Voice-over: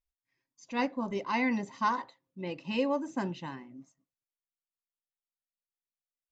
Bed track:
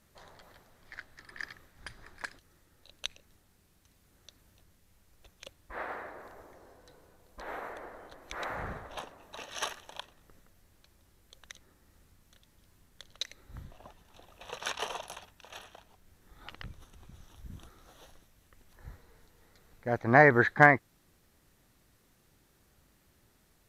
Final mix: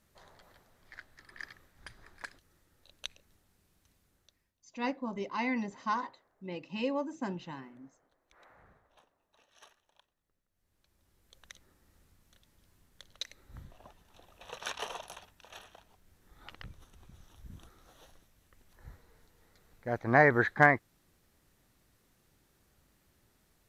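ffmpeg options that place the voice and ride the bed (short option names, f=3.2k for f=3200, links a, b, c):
-filter_complex "[0:a]adelay=4050,volume=-3.5dB[a];[1:a]volume=16.5dB,afade=t=out:st=3.89:d=0.64:silence=0.105925,afade=t=in:st=10.48:d=0.98:silence=0.0944061[b];[a][b]amix=inputs=2:normalize=0"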